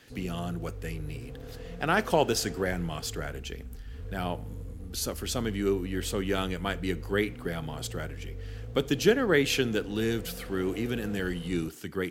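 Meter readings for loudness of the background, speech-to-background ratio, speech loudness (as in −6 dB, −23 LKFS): −42.5 LKFS, 12.0 dB, −30.5 LKFS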